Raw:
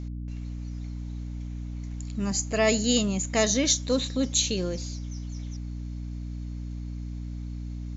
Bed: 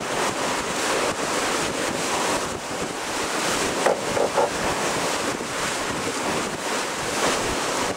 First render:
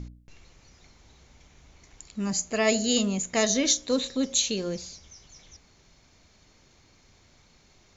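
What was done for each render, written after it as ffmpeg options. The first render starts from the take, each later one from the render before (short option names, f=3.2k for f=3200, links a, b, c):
-af "bandreject=f=60:t=h:w=4,bandreject=f=120:t=h:w=4,bandreject=f=180:t=h:w=4,bandreject=f=240:t=h:w=4,bandreject=f=300:t=h:w=4,bandreject=f=360:t=h:w=4,bandreject=f=420:t=h:w=4,bandreject=f=480:t=h:w=4,bandreject=f=540:t=h:w=4,bandreject=f=600:t=h:w=4,bandreject=f=660:t=h:w=4"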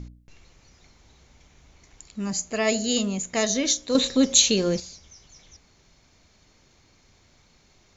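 -filter_complex "[0:a]asplit=3[a][b][c];[a]atrim=end=3.952[d];[b]atrim=start=3.948:end=4.802,asetpts=PTS-STARTPTS,volume=7.5dB[e];[c]atrim=start=4.798[f];[d][e]acrossfade=d=0.004:c1=hsin:c2=hsin[g];[g][f]acrossfade=d=0.004:c1=hsin:c2=hsin"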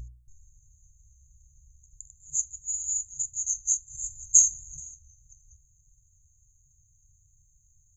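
-af "afftfilt=real='re*(1-between(b*sr/4096,150,6200))':imag='im*(1-between(b*sr/4096,150,6200))':win_size=4096:overlap=0.75,equalizer=f=125:t=o:w=1:g=-5,equalizer=f=500:t=o:w=1:g=5,equalizer=f=1k:t=o:w=1:g=11,equalizer=f=2k:t=o:w=1:g=8,equalizer=f=4k:t=o:w=1:g=8"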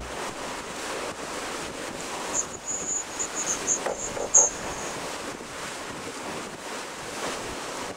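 -filter_complex "[1:a]volume=-9.5dB[a];[0:a][a]amix=inputs=2:normalize=0"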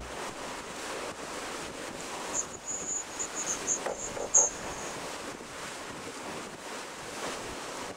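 -af "volume=-5dB"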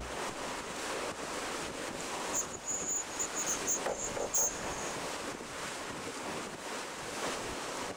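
-af "asoftclip=type=hard:threshold=-27dB"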